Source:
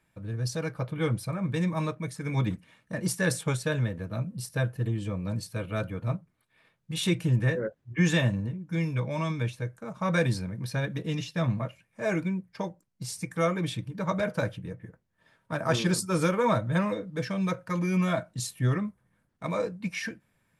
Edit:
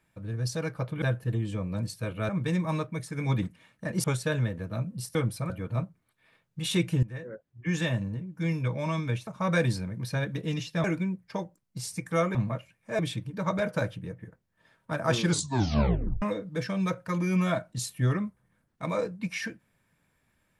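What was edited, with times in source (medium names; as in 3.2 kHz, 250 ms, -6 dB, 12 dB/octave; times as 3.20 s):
1.02–1.37 s: swap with 4.55–5.82 s
3.12–3.44 s: delete
7.35–8.84 s: fade in, from -16.5 dB
9.59–9.88 s: delete
11.45–12.09 s: move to 13.60 s
15.86 s: tape stop 0.97 s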